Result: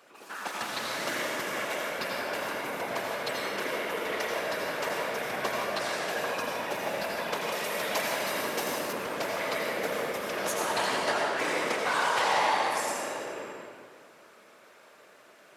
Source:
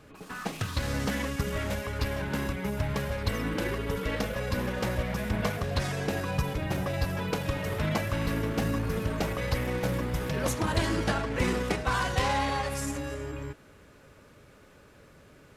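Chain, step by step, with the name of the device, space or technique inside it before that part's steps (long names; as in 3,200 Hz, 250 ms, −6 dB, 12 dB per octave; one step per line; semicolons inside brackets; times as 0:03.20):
whispering ghost (random phases in short frames; high-pass filter 520 Hz 12 dB per octave; convolution reverb RT60 1.7 s, pre-delay 77 ms, DRR −1.5 dB)
0:07.52–0:08.93: bass and treble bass −2 dB, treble +7 dB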